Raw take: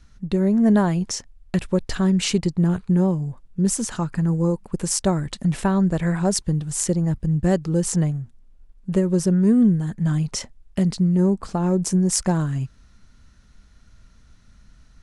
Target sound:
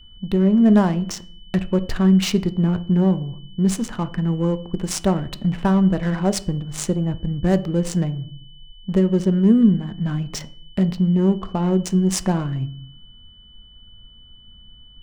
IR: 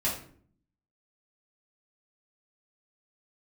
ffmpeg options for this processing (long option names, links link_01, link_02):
-filter_complex "[0:a]adynamicsmooth=sensitivity=5:basefreq=1000,aeval=exprs='val(0)+0.00398*sin(2*PI*3000*n/s)':channel_layout=same,asplit=2[link_01][link_02];[1:a]atrim=start_sample=2205,highshelf=frequency=5300:gain=-9.5[link_03];[link_02][link_03]afir=irnorm=-1:irlink=0,volume=-17.5dB[link_04];[link_01][link_04]amix=inputs=2:normalize=0"